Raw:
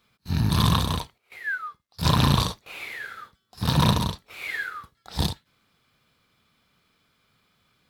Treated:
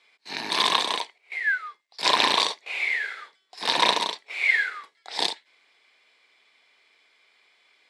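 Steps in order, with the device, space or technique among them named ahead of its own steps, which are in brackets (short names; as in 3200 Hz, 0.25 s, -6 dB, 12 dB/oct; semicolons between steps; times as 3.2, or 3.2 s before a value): phone speaker on a table (speaker cabinet 410–8200 Hz, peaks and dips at 520 Hz -5 dB, 1300 Hz -10 dB, 2100 Hz +9 dB, 6300 Hz -4 dB); gain +5.5 dB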